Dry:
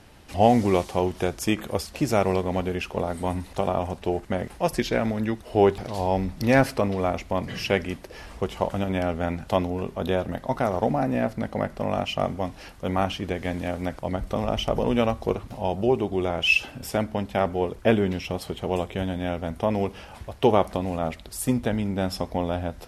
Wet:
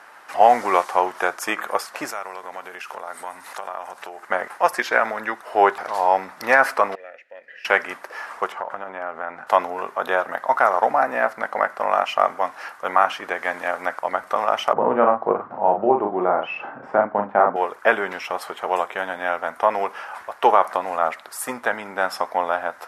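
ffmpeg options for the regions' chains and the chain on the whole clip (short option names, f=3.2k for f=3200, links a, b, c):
-filter_complex "[0:a]asettb=1/sr,asplit=3[a][b][c];[a]atrim=end=2.104[d];[b]atrim=start=2.1:end=4.23,asetpts=PTS-STARTPTS,afade=t=in:d=0.004:c=qsin,afade=t=out:st=2.126:d=0.004:c=qsin,highshelf=f=2.7k:g=10,acompressor=threshold=-36dB:ratio=4:attack=3.2:release=140:knee=1:detection=peak[e];[c]atrim=start=4.226[f];[d][e]acrossfade=d=0.004:c1=hsin:c2=qsin[g];[g][f]acrossfade=d=0.004:c1=qsin:c2=hsin,asettb=1/sr,asplit=3[h][i][j];[h]atrim=end=6.954[k];[i]atrim=start=6.95:end=7.65,asetpts=PTS-STARTPTS,afade=t=in:d=0.004:c=qsin,afade=t=out:st=0.696:d=0.004:c=qsin,asplit=3[l][m][n];[l]bandpass=f=530:t=q:w=8,volume=0dB[o];[m]bandpass=f=1.84k:t=q:w=8,volume=-6dB[p];[n]bandpass=f=2.48k:t=q:w=8,volume=-9dB[q];[o][p][q]amix=inputs=3:normalize=0,equalizer=f=630:t=o:w=1.9:g=-11.5[r];[j]atrim=start=7.646[s];[k][r]acrossfade=d=0.004:c1=hsin:c2=qsin[t];[t][s]acrossfade=d=0.004:c1=qsin:c2=hsin,asettb=1/sr,asplit=3[u][v][w];[u]atrim=end=8.524[x];[v]atrim=start=8.52:end=9.47,asetpts=PTS-STARTPTS,afade=t=in:d=0.004:c=qsin,afade=t=out:st=0.946:d=0.004:c=qsin,lowpass=f=1.4k:p=1,acompressor=threshold=-28dB:ratio=10:attack=3.2:release=140:knee=1:detection=peak[y];[w]atrim=start=9.466[z];[x][y]acrossfade=d=0.004:c1=hsin:c2=qsin[aa];[aa][z]acrossfade=d=0.004:c1=qsin:c2=hsin,asettb=1/sr,asplit=3[ab][ac][ad];[ab]atrim=end=14.734[ae];[ac]atrim=start=14.73:end=17.56,asetpts=PTS-STARTPTS,afade=t=in:d=0.004:c=qsin,afade=t=out:st=2.826:d=0.004:c=qsin,lowpass=1.1k,equalizer=f=170:w=0.58:g=10.5,asplit=2[af][ag];[ag]adelay=39,volume=-4.5dB[ah];[af][ah]amix=inputs=2:normalize=0,atrim=end_sample=124803[ai];[ad]atrim=start=17.556[aj];[ae][ai]acrossfade=d=0.004:c1=hsin:c2=qsin[ak];[ak][aj]acrossfade=d=0.004:c1=qsin:c2=hsin,highpass=1.2k,highshelf=f=2.1k:t=q:w=1.5:g=-13.5,alimiter=level_in=16.5dB:limit=-1dB:release=50:level=0:latency=1,volume=-1dB"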